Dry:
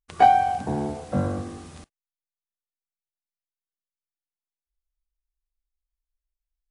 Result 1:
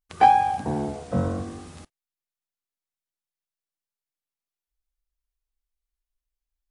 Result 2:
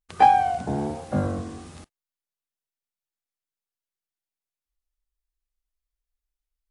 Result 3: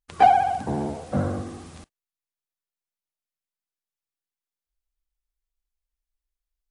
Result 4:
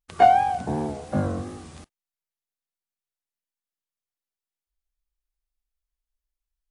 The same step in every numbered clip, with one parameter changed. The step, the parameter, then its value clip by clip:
vibrato, rate: 0.63 Hz, 1.2 Hz, 15 Hz, 2.8 Hz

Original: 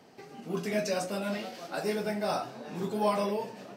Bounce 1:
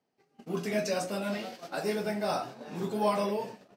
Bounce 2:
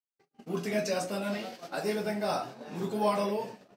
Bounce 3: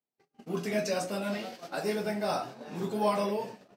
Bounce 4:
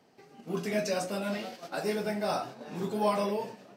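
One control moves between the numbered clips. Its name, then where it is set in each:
gate, range: -24 dB, -57 dB, -41 dB, -7 dB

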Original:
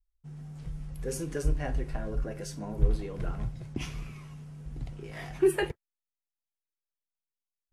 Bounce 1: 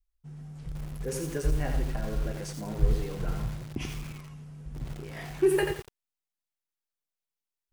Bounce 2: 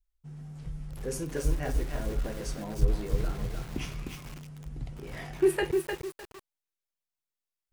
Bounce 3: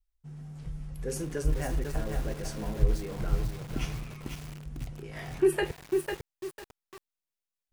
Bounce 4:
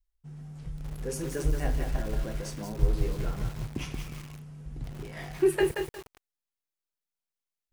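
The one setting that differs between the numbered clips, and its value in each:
bit-crushed delay, time: 87 ms, 304 ms, 499 ms, 179 ms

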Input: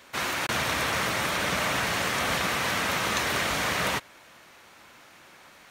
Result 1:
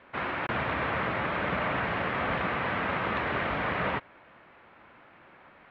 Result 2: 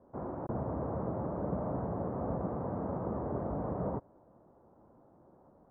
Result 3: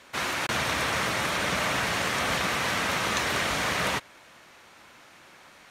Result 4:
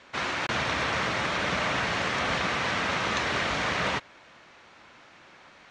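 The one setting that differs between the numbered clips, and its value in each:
Bessel low-pass, frequency: 1.8 kHz, 530 Hz, 12 kHz, 4.6 kHz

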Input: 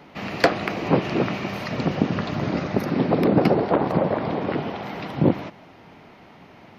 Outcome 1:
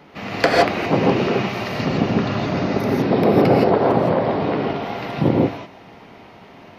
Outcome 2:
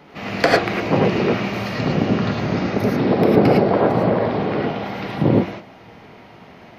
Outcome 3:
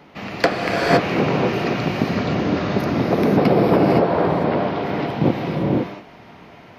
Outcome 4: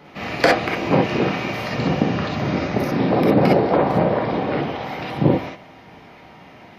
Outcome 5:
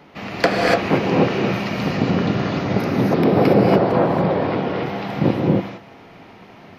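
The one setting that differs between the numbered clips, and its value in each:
gated-style reverb, gate: 190 ms, 130 ms, 540 ms, 80 ms, 310 ms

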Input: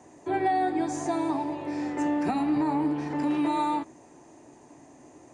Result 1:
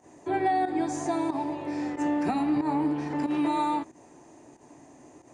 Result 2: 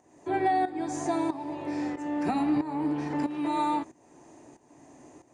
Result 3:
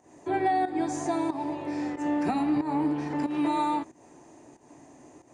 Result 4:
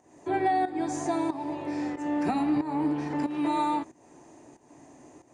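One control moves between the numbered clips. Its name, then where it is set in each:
volume shaper, release: 94 ms, 524 ms, 205 ms, 331 ms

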